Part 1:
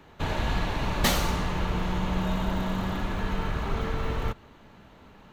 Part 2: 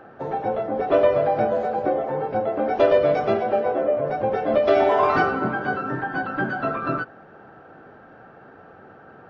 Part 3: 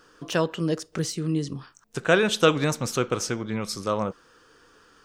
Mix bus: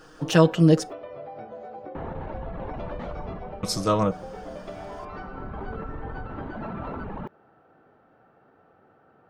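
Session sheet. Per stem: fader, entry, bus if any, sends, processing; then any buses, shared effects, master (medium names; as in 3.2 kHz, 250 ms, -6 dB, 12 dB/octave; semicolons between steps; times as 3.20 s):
-12.0 dB, 1.95 s, no send, reverb removal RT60 1 s; low-pass 1.1 kHz 12 dB/octave; level flattener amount 100%; auto duck -10 dB, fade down 0.35 s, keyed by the third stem
-12.0 dB, 0.00 s, no send, band-stop 1.6 kHz, Q 11; de-hum 198.2 Hz, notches 3; compression 6:1, threshold -24 dBFS, peak gain reduction 11 dB
+2.0 dB, 0.00 s, muted 0.93–3.63 s, no send, bass shelf 180 Hz +9 dB; comb 6.4 ms, depth 64%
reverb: none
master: none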